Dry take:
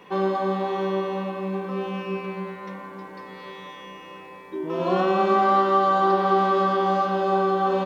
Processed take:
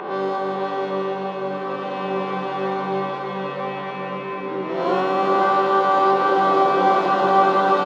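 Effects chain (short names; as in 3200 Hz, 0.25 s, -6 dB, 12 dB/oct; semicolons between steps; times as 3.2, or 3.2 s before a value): spectral swells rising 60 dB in 0.70 s; low-pass opened by the level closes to 2000 Hz, open at -16 dBFS; HPF 260 Hz 12 dB/oct; in parallel at -0.5 dB: upward compressor, threshold -23 dBFS; on the sum: harmoniser -5 st -13 dB, +4 st -16 dB, +5 st -17 dB; on a send: echo 0.489 s -6.5 dB; on the sum: bloom reverb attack 2.23 s, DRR -0.5 dB; gain -6 dB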